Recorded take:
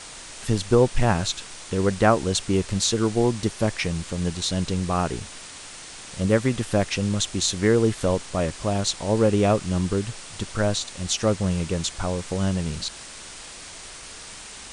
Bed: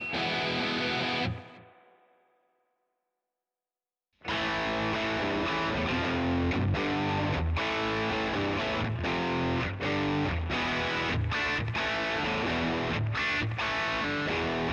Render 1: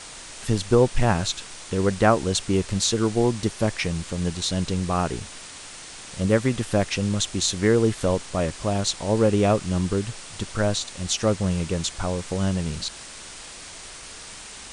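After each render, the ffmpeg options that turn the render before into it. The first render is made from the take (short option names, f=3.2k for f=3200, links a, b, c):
-af anull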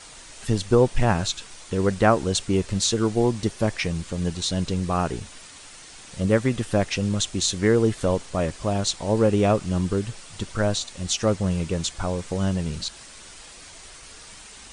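-af "afftdn=nr=6:nf=-41"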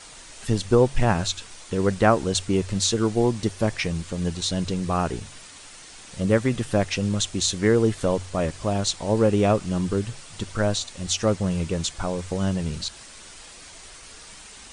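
-af "bandreject=f=46.01:t=h:w=4,bandreject=f=92.02:t=h:w=4,bandreject=f=138.03:t=h:w=4"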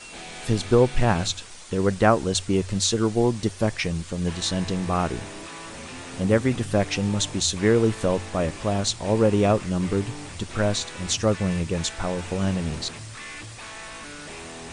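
-filter_complex "[1:a]volume=-10dB[a];[0:a][a]amix=inputs=2:normalize=0"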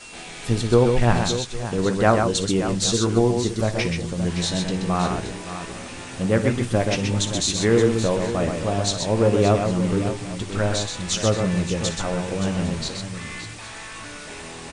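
-filter_complex "[0:a]asplit=2[a][b];[b]adelay=17,volume=-11dB[c];[a][c]amix=inputs=2:normalize=0,aecho=1:1:57|128|573|805:0.211|0.562|0.282|0.1"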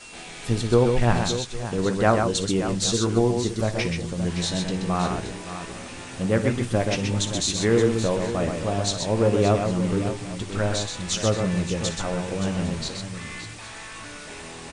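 -af "volume=-2dB"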